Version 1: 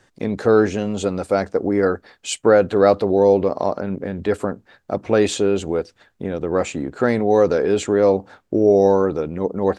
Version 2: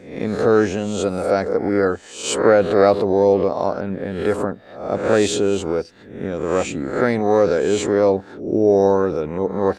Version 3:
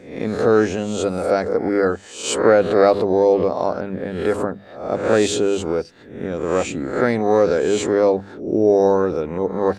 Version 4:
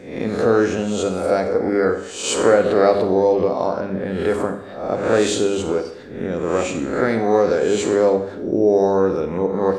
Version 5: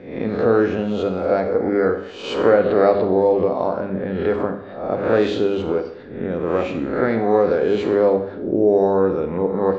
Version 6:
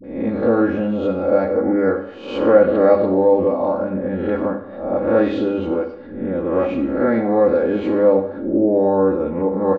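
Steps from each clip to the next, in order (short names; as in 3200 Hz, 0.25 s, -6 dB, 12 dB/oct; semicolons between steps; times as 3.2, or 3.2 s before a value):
spectral swells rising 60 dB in 0.60 s; gain -1 dB
notches 50/100/150/200 Hz
in parallel at -1 dB: compressor, threshold -27 dBFS, peak gain reduction 17 dB; on the sum: Schroeder reverb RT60 0.68 s, combs from 31 ms, DRR 6.5 dB; gain -2.5 dB
LPF 4500 Hz 24 dB/oct; high shelf 3100 Hz -8.5 dB
LPF 1300 Hz 6 dB/oct; comb 3.6 ms, depth 62%; dispersion highs, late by 42 ms, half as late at 530 Hz; gain +1 dB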